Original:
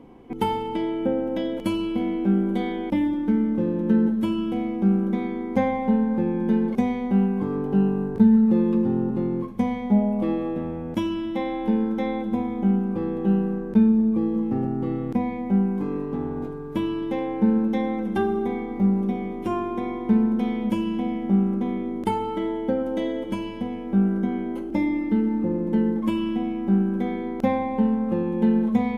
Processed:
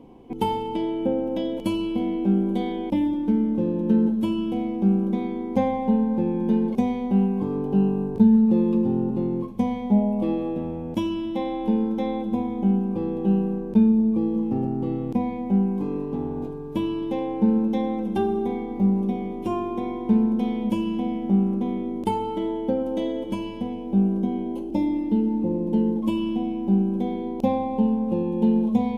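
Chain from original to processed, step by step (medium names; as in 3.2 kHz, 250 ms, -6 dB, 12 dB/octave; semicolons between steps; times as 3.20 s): high-order bell 1.6 kHz -8.5 dB 1 oct, from 23.72 s -15.5 dB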